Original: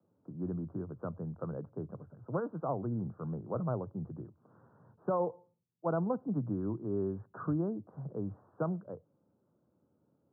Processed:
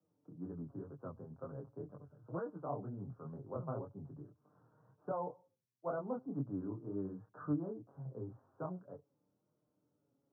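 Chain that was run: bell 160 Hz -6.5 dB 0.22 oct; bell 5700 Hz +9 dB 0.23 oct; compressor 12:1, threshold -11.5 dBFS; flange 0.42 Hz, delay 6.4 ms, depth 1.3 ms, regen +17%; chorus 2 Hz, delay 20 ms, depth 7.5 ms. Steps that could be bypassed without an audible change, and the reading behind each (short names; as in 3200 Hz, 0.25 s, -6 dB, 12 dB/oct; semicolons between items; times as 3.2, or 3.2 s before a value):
bell 5700 Hz: input band ends at 1500 Hz; compressor, threshold -11.5 dBFS: input peak -21.5 dBFS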